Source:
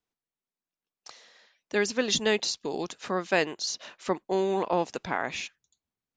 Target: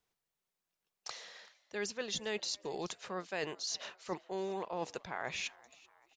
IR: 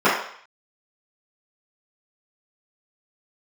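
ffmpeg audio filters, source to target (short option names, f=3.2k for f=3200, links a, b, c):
-filter_complex "[0:a]equalizer=f=270:w=4:g=-11.5,areverse,acompressor=threshold=-43dB:ratio=4,areverse,asplit=4[a][b][c][d];[b]adelay=385,afreqshift=98,volume=-23dB[e];[c]adelay=770,afreqshift=196,volume=-28.7dB[f];[d]adelay=1155,afreqshift=294,volume=-34.4dB[g];[a][e][f][g]amix=inputs=4:normalize=0,volume=4.5dB"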